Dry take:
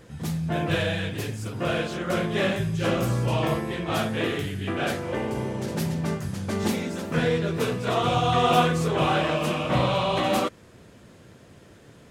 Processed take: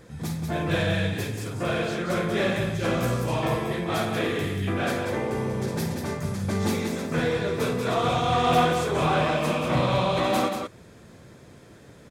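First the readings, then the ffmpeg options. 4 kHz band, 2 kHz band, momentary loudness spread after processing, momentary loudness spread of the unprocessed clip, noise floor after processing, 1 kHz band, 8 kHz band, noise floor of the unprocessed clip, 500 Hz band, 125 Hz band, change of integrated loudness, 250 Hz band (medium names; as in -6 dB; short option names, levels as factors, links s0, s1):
-1.5 dB, +0.5 dB, 7 LU, 7 LU, -50 dBFS, 0.0 dB, +0.5 dB, -51 dBFS, +0.5 dB, -0.5 dB, 0.0 dB, 0.0 dB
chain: -filter_complex "[0:a]bandreject=f=2900:w=9.1,asoftclip=type=tanh:threshold=0.178,asplit=2[s0][s1];[s1]aecho=0:1:52.48|186.6:0.316|0.501[s2];[s0][s2]amix=inputs=2:normalize=0"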